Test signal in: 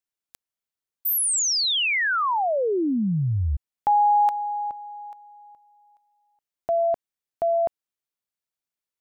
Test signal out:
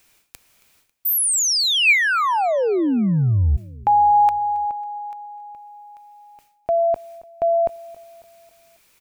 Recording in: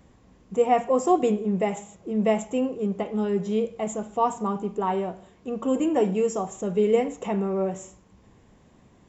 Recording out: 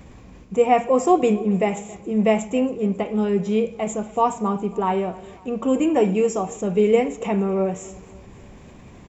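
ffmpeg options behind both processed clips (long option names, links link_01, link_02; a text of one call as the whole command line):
ffmpeg -i in.wav -af "lowshelf=frequency=110:gain=5,areverse,acompressor=mode=upward:threshold=-38dB:ratio=2.5:attack=2.6:release=136:knee=2.83:detection=peak,areverse,equalizer=frequency=2400:width_type=o:width=0.22:gain=8,aecho=1:1:273|546|819|1092:0.0841|0.0438|0.0228|0.0118,volume=3.5dB" out.wav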